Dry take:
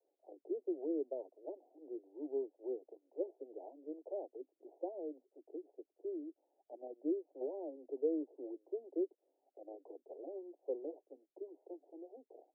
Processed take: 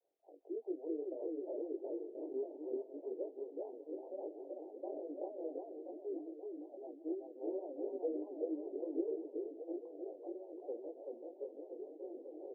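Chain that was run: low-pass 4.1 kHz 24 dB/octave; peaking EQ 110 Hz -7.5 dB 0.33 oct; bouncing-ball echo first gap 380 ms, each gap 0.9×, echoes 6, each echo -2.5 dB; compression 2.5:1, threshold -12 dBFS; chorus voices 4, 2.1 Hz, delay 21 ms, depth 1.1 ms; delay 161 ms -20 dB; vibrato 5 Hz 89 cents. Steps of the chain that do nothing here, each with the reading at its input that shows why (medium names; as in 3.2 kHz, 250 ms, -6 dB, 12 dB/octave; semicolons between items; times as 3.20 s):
low-pass 4.1 kHz: input has nothing above 850 Hz; peaking EQ 110 Hz: input has nothing below 240 Hz; compression, threshold -12 dBFS: peak at its input -24.5 dBFS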